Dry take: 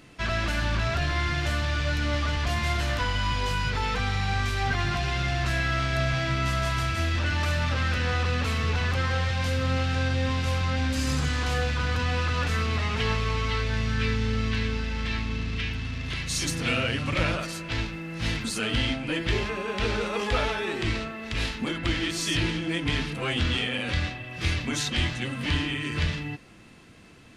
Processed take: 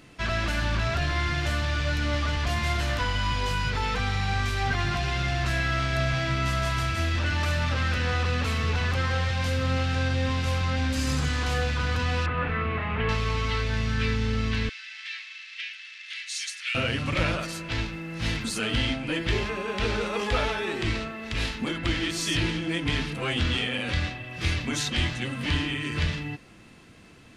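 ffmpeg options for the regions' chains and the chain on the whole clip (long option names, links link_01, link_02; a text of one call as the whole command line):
ffmpeg -i in.wav -filter_complex "[0:a]asettb=1/sr,asplit=3[link_01][link_02][link_03];[link_01]atrim=end=12.264[link_04];[link_02]atrim=start=12.26:end=13.09,asetpts=PTS-STARTPTS,afade=type=in:duration=0.004:curve=qsin,afade=type=out:start_time=0.826:duration=0.004:curve=qsin,lowpass=frequency=2500:width=0.5412,lowpass=frequency=2500:width=1.3066,asplit=2[link_05][link_06];[link_06]adelay=30,volume=-6.5dB[link_07];[link_05][link_07]amix=inputs=2:normalize=0,atrim=end_sample=36603[link_08];[link_03]atrim=start=13.086[link_09];[link_04][link_08]acrossfade=duration=0.004:curve1=hsin:curve2=qsin[link_10];[link_10][link_09]acrossfade=duration=0.004:curve1=qsin:curve2=hsin,asettb=1/sr,asplit=3[link_11][link_12][link_13];[link_11]atrim=end=14.694[link_14];[link_12]atrim=start=14.69:end=16.75,asetpts=PTS-STARTPTS,afade=type=in:duration=0.004:curve=qsin,afade=type=out:start_time=2.056:duration=0.004:curve=qsin,asuperpass=centerf=4700:order=8:qfactor=0.52,highshelf=frequency=5000:gain=-6.5[link_15];[link_13]atrim=start=16.746[link_16];[link_14][link_15]acrossfade=duration=0.004:curve1=hsin:curve2=qsin[link_17];[link_17][link_16]acrossfade=duration=0.004:curve1=qsin:curve2=hsin" out.wav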